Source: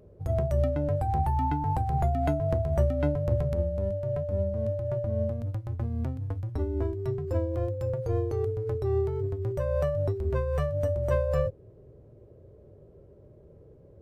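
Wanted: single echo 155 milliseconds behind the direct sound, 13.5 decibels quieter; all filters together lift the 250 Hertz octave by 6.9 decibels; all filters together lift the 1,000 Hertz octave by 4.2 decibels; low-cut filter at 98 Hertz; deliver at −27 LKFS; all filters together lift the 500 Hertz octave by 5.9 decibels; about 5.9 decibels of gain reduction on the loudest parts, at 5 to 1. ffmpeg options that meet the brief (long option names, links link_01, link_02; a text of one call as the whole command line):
ffmpeg -i in.wav -af "highpass=98,equalizer=frequency=250:width_type=o:gain=8,equalizer=frequency=500:width_type=o:gain=4.5,equalizer=frequency=1000:width_type=o:gain=3,acompressor=threshold=-24dB:ratio=5,aecho=1:1:155:0.211,volume=1.5dB" out.wav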